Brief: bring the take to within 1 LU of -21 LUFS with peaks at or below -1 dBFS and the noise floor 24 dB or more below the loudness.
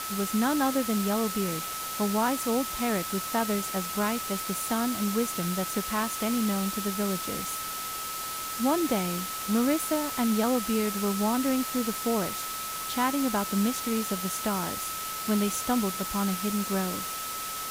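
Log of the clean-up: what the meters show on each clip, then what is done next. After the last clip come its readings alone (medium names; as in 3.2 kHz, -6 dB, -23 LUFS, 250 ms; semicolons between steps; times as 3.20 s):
steady tone 1.3 kHz; tone level -36 dBFS; noise floor -35 dBFS; noise floor target -52 dBFS; loudness -28.0 LUFS; peak level -13.5 dBFS; loudness target -21.0 LUFS
-> band-stop 1.3 kHz, Q 30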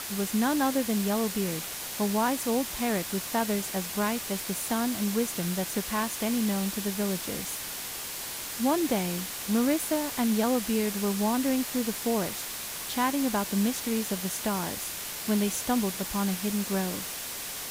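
steady tone not found; noise floor -37 dBFS; noise floor target -53 dBFS
-> noise print and reduce 16 dB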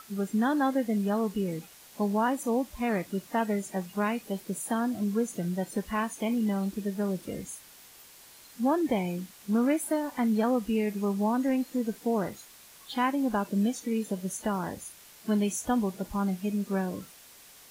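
noise floor -53 dBFS; noise floor target -54 dBFS
-> noise print and reduce 6 dB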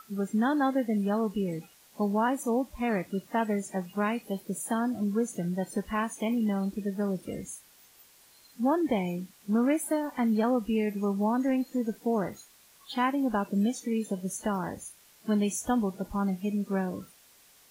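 noise floor -59 dBFS; loudness -29.5 LUFS; peak level -15.0 dBFS; loudness target -21.0 LUFS
-> trim +8.5 dB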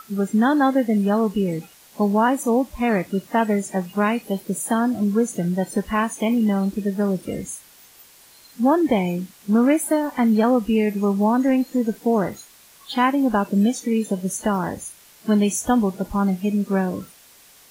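loudness -21.0 LUFS; peak level -6.5 dBFS; noise floor -50 dBFS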